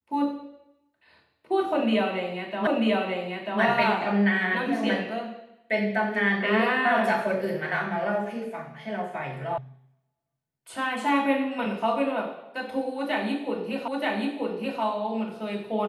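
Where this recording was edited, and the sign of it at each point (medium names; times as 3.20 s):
2.67 s: repeat of the last 0.94 s
9.58 s: sound stops dead
13.88 s: repeat of the last 0.93 s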